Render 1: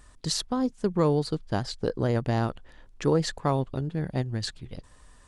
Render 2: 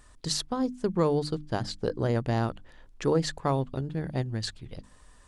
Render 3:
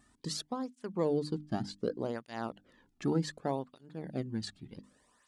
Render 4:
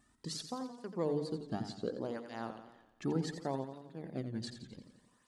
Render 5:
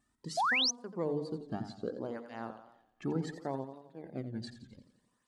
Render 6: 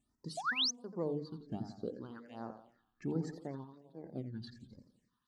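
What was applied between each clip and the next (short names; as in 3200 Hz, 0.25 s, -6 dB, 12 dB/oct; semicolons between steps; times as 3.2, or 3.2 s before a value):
notches 50/100/150/200/250/300 Hz; gain -1 dB
bell 220 Hz +7.5 dB 1 oct; tape flanging out of phase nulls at 0.66 Hz, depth 2.1 ms; gain -5.5 dB
warbling echo 87 ms, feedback 55%, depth 89 cents, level -9 dB; gain -4 dB
spectral noise reduction 7 dB; painted sound rise, 0.37–0.71, 630–6500 Hz -29 dBFS
phaser stages 6, 1.3 Hz, lowest notch 550–3100 Hz; gain -2.5 dB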